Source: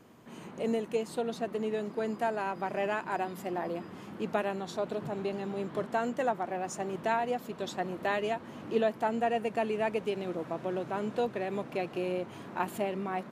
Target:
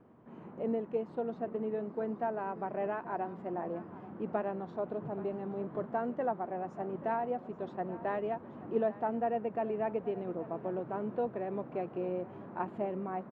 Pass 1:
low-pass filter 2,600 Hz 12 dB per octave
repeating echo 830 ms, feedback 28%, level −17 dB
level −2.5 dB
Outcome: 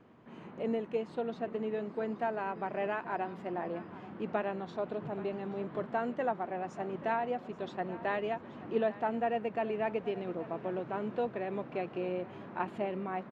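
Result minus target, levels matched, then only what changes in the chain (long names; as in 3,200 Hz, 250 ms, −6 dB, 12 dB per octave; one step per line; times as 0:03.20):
2,000 Hz band +6.0 dB
change: low-pass filter 1,200 Hz 12 dB per octave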